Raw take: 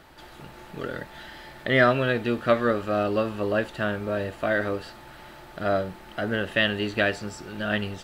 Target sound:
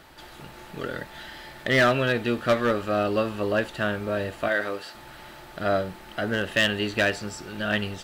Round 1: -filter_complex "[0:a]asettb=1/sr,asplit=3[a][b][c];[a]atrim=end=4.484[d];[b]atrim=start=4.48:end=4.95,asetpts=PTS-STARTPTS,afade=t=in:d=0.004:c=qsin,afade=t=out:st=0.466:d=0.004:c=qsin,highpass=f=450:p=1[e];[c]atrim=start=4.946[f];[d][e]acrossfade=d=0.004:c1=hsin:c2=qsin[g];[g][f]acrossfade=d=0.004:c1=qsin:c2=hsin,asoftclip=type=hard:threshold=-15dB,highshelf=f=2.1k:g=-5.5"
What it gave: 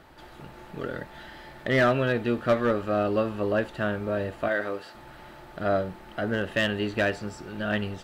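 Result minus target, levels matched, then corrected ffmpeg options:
4000 Hz band -5.0 dB
-filter_complex "[0:a]asettb=1/sr,asplit=3[a][b][c];[a]atrim=end=4.484[d];[b]atrim=start=4.48:end=4.95,asetpts=PTS-STARTPTS,afade=t=in:d=0.004:c=qsin,afade=t=out:st=0.466:d=0.004:c=qsin,highpass=f=450:p=1[e];[c]atrim=start=4.946[f];[d][e]acrossfade=d=0.004:c1=hsin:c2=qsin[g];[g][f]acrossfade=d=0.004:c1=qsin:c2=hsin,asoftclip=type=hard:threshold=-15dB,highshelf=f=2.1k:g=4"

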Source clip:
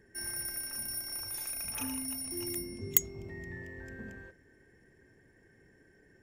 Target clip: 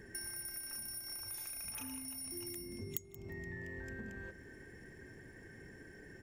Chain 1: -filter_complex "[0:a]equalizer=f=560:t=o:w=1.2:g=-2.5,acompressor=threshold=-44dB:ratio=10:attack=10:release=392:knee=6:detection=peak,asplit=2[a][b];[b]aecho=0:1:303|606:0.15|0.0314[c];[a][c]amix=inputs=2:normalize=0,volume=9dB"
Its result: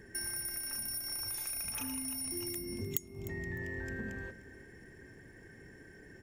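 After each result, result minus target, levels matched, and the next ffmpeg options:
echo 0.125 s late; compressor: peak gain reduction -6 dB
-filter_complex "[0:a]equalizer=f=560:t=o:w=1.2:g=-2.5,acompressor=threshold=-44dB:ratio=10:attack=10:release=392:knee=6:detection=peak,asplit=2[a][b];[b]aecho=0:1:178|356:0.15|0.0314[c];[a][c]amix=inputs=2:normalize=0,volume=9dB"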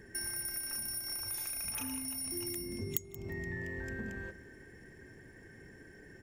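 compressor: peak gain reduction -6 dB
-filter_complex "[0:a]equalizer=f=560:t=o:w=1.2:g=-2.5,acompressor=threshold=-50.5dB:ratio=10:attack=10:release=392:knee=6:detection=peak,asplit=2[a][b];[b]aecho=0:1:178|356:0.15|0.0314[c];[a][c]amix=inputs=2:normalize=0,volume=9dB"

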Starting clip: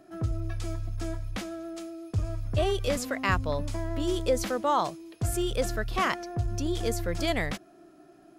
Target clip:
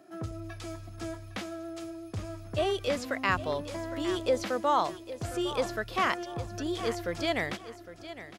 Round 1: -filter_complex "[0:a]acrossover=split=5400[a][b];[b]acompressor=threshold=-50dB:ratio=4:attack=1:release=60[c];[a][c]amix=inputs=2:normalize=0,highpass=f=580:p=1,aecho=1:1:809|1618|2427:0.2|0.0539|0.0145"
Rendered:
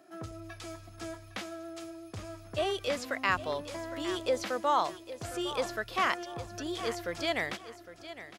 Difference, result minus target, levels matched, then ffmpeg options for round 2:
250 Hz band -3.0 dB
-filter_complex "[0:a]acrossover=split=5400[a][b];[b]acompressor=threshold=-50dB:ratio=4:attack=1:release=60[c];[a][c]amix=inputs=2:normalize=0,highpass=f=250:p=1,aecho=1:1:809|1618|2427:0.2|0.0539|0.0145"

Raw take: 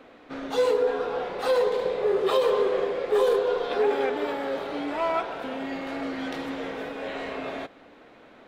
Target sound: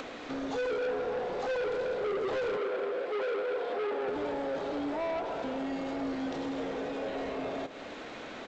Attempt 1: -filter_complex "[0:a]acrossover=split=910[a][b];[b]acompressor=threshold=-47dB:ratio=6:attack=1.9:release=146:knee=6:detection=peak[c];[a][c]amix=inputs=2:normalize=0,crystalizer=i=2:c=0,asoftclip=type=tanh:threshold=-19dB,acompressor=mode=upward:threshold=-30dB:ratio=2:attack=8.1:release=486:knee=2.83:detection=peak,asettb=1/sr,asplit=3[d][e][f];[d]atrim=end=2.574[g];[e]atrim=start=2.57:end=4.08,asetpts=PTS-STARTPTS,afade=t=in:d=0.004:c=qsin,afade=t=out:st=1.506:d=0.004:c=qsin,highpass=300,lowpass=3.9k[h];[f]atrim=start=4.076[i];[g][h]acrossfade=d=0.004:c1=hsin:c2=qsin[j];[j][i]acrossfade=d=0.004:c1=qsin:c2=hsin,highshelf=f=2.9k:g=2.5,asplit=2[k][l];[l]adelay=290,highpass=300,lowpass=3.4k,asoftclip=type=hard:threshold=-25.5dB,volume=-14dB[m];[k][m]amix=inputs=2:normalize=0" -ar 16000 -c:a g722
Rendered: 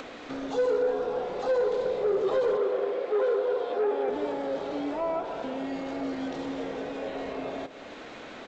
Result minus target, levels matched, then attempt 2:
soft clip: distortion -11 dB
-filter_complex "[0:a]acrossover=split=910[a][b];[b]acompressor=threshold=-47dB:ratio=6:attack=1.9:release=146:knee=6:detection=peak[c];[a][c]amix=inputs=2:normalize=0,crystalizer=i=2:c=0,asoftclip=type=tanh:threshold=-30.5dB,acompressor=mode=upward:threshold=-30dB:ratio=2:attack=8.1:release=486:knee=2.83:detection=peak,asettb=1/sr,asplit=3[d][e][f];[d]atrim=end=2.574[g];[e]atrim=start=2.57:end=4.08,asetpts=PTS-STARTPTS,afade=t=in:d=0.004:c=qsin,afade=t=out:st=1.506:d=0.004:c=qsin,highpass=300,lowpass=3.9k[h];[f]atrim=start=4.076[i];[g][h]acrossfade=d=0.004:c1=hsin:c2=qsin[j];[j][i]acrossfade=d=0.004:c1=qsin:c2=hsin,highshelf=f=2.9k:g=2.5,asplit=2[k][l];[l]adelay=290,highpass=300,lowpass=3.4k,asoftclip=type=hard:threshold=-25.5dB,volume=-14dB[m];[k][m]amix=inputs=2:normalize=0" -ar 16000 -c:a g722

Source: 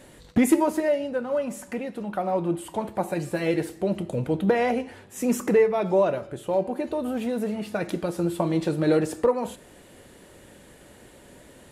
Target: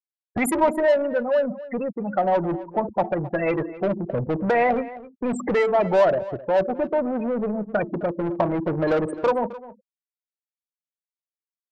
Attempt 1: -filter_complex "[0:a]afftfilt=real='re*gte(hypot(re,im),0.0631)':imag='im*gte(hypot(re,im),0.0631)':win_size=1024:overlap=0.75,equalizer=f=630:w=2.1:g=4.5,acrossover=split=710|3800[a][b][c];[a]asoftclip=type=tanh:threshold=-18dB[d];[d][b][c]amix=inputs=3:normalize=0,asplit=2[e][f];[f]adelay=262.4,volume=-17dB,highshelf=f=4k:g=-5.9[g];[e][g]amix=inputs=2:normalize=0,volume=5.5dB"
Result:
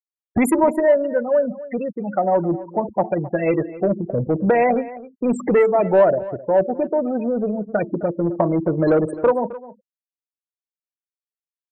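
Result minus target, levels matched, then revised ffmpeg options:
soft clip: distortion -8 dB
-filter_complex "[0:a]afftfilt=real='re*gte(hypot(re,im),0.0631)':imag='im*gte(hypot(re,im),0.0631)':win_size=1024:overlap=0.75,equalizer=f=630:w=2.1:g=4.5,acrossover=split=710|3800[a][b][c];[a]asoftclip=type=tanh:threshold=-28dB[d];[d][b][c]amix=inputs=3:normalize=0,asplit=2[e][f];[f]adelay=262.4,volume=-17dB,highshelf=f=4k:g=-5.9[g];[e][g]amix=inputs=2:normalize=0,volume=5.5dB"

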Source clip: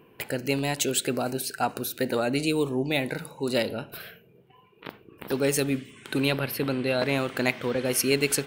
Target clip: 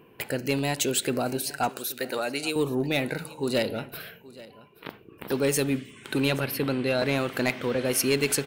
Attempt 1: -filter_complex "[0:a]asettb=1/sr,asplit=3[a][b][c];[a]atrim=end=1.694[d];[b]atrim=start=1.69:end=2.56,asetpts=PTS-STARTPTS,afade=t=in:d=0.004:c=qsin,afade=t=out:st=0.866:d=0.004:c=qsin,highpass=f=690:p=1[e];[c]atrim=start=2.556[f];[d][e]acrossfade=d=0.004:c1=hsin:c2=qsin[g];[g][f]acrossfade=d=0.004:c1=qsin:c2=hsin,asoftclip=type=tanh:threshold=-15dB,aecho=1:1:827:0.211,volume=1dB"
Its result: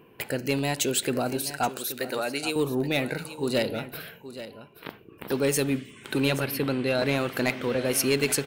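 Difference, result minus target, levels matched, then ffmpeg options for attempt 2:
echo-to-direct +6.5 dB
-filter_complex "[0:a]asettb=1/sr,asplit=3[a][b][c];[a]atrim=end=1.694[d];[b]atrim=start=1.69:end=2.56,asetpts=PTS-STARTPTS,afade=t=in:d=0.004:c=qsin,afade=t=out:st=0.866:d=0.004:c=qsin,highpass=f=690:p=1[e];[c]atrim=start=2.556[f];[d][e]acrossfade=d=0.004:c1=hsin:c2=qsin[g];[g][f]acrossfade=d=0.004:c1=qsin:c2=hsin,asoftclip=type=tanh:threshold=-15dB,aecho=1:1:827:0.1,volume=1dB"

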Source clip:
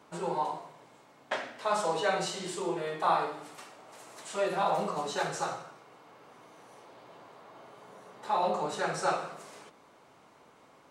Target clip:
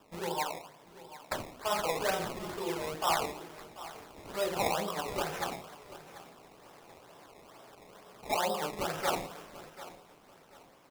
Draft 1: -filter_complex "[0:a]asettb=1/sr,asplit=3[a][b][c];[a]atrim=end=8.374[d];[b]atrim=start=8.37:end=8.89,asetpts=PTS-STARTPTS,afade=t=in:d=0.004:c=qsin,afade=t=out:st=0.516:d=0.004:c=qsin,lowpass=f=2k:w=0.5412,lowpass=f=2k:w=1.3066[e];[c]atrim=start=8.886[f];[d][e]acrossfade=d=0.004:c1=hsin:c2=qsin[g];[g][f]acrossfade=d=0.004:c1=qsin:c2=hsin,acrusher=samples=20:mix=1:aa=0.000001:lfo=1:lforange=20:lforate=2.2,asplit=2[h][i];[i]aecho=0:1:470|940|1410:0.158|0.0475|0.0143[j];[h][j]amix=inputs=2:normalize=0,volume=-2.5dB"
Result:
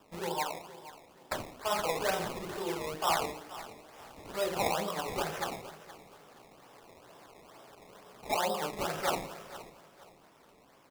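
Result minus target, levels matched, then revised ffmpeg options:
echo 0.268 s early
-filter_complex "[0:a]asettb=1/sr,asplit=3[a][b][c];[a]atrim=end=8.374[d];[b]atrim=start=8.37:end=8.89,asetpts=PTS-STARTPTS,afade=t=in:d=0.004:c=qsin,afade=t=out:st=0.516:d=0.004:c=qsin,lowpass=f=2k:w=0.5412,lowpass=f=2k:w=1.3066[e];[c]atrim=start=8.886[f];[d][e]acrossfade=d=0.004:c1=hsin:c2=qsin[g];[g][f]acrossfade=d=0.004:c1=qsin:c2=hsin,acrusher=samples=20:mix=1:aa=0.000001:lfo=1:lforange=20:lforate=2.2,asplit=2[h][i];[i]aecho=0:1:738|1476|2214:0.158|0.0475|0.0143[j];[h][j]amix=inputs=2:normalize=0,volume=-2.5dB"

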